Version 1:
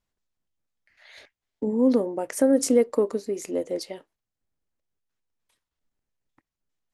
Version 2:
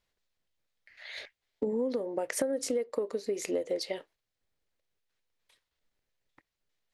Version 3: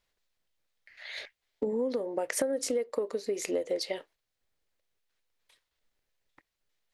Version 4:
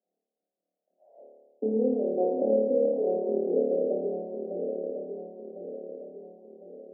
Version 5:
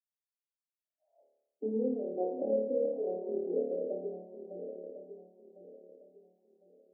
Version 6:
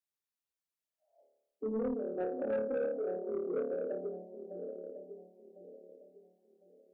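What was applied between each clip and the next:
graphic EQ 250/500/2000/4000 Hz -3/+6/+6/+7 dB; compression 20:1, threshold -26 dBFS, peak gain reduction 17.5 dB; trim -1 dB
peaking EQ 140 Hz -3.5 dB 2.8 oct; trim +2 dB
backward echo that repeats 527 ms, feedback 67%, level -5 dB; Chebyshev band-pass 180–750 Hz, order 5; flutter echo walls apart 4.7 m, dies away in 1.3 s
expander on every frequency bin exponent 1.5; trim -4.5 dB
saturation -27.5 dBFS, distortion -15 dB

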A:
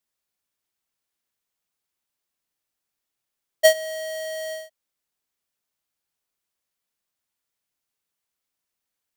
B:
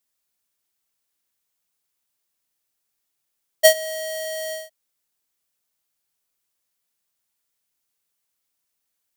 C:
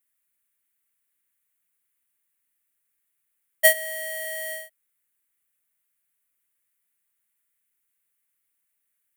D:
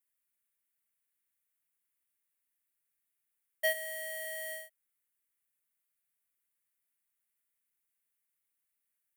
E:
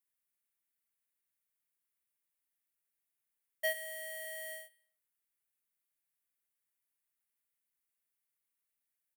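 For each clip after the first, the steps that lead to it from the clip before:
treble shelf 5.2 kHz +6.5 dB; trim +1 dB
FFT filter 310 Hz 0 dB, 790 Hz -5 dB, 2 kHz +8 dB, 5.2 kHz -10 dB, 9.5 kHz +6 dB; trim -4 dB
saturation -17 dBFS, distortion -6 dB; trim -7.5 dB
feedback delay 100 ms, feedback 43%, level -23 dB; trim -3.5 dB

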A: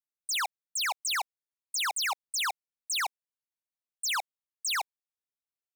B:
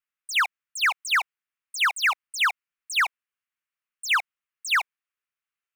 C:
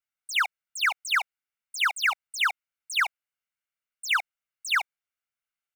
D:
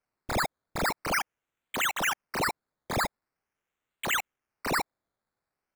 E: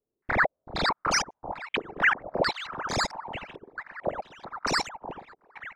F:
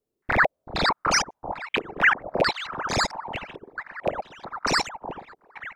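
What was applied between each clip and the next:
high-order bell 1.8 kHz +13 dB; trim -2.5 dB
comb 1.4 ms, depth 42%; trim -3 dB
peak limiter -25.5 dBFS, peak gain reduction 9.5 dB; decimation with a swept rate 12×, swing 60% 0.44 Hz; trim +4 dB
echo whose repeats swap between lows and highs 381 ms, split 920 Hz, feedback 69%, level -10 dB; step-sequenced low-pass 4.5 Hz 410–5800 Hz
rattle on loud lows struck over -32 dBFS, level -21 dBFS; trim +3.5 dB

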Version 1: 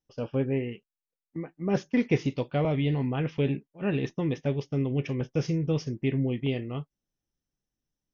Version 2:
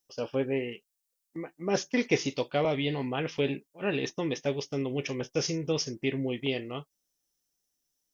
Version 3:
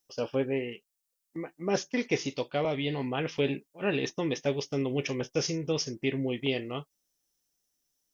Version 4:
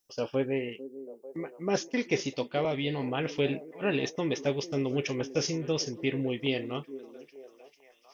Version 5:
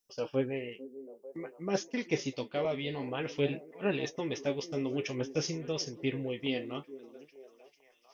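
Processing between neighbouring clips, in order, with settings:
tone controls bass -12 dB, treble +13 dB; trim +2 dB
gain riding 0.5 s
repeats whose band climbs or falls 446 ms, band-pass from 330 Hz, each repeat 0.7 oct, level -11.5 dB
flange 0.53 Hz, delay 4.1 ms, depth 8.3 ms, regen +48%

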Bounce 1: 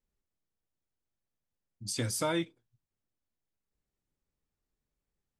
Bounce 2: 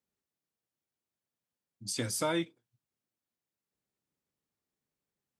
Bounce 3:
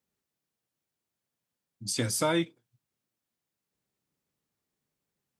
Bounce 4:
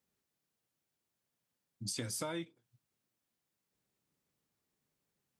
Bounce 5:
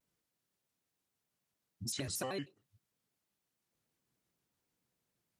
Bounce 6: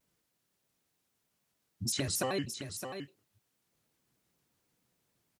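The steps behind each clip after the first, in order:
high-pass 130 Hz 12 dB/octave
peaking EQ 140 Hz +2.5 dB 0.9 oct; trim +4 dB
compression 4:1, threshold -38 dBFS, peak gain reduction 13.5 dB
vibrato with a chosen wave square 6.5 Hz, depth 250 cents
delay 615 ms -8.5 dB; trim +6 dB

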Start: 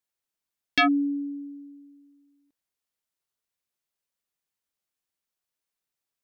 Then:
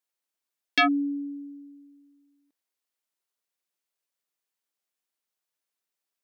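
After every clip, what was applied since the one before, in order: high-pass 250 Hz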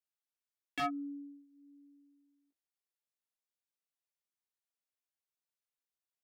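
chorus 0.45 Hz, delay 17.5 ms, depth 2.5 ms; de-hum 323.4 Hz, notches 4; slew-rate limiter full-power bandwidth 110 Hz; trim -8 dB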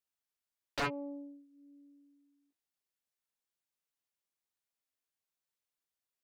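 loudspeaker Doppler distortion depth 0.79 ms; trim +1 dB

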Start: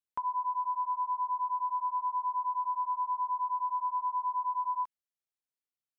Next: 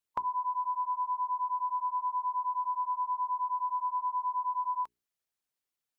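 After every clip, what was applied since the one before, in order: harmonic-percussive split percussive +8 dB; hum notches 60/120/180/240/300/360/420 Hz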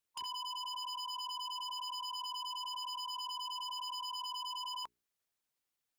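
wavefolder -37.5 dBFS; trim +1 dB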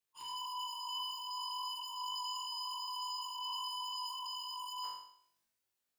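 phase randomisation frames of 50 ms; on a send: flutter echo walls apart 3.6 m, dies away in 0.61 s; on the sum: transient shaper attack -8 dB, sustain +4 dB; trim -3.5 dB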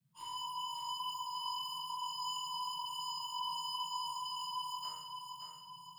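band noise 120–180 Hz -70 dBFS; thinning echo 571 ms, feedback 53%, high-pass 230 Hz, level -5.5 dB; reverberation RT60 0.50 s, pre-delay 3 ms, DRR -0.5 dB; trim -3 dB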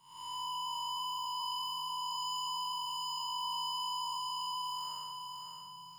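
spectral blur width 265 ms; hard clipper -35 dBFS, distortion -28 dB; trim +4 dB

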